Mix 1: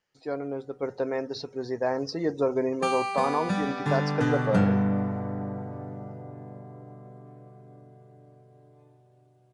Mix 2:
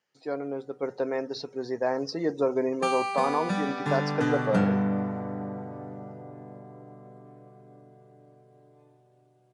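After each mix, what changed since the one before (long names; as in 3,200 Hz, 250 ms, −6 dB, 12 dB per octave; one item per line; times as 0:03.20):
master: add high-pass filter 150 Hz 12 dB per octave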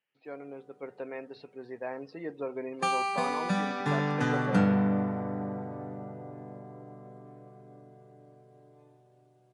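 speech: add transistor ladder low-pass 3,000 Hz, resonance 60%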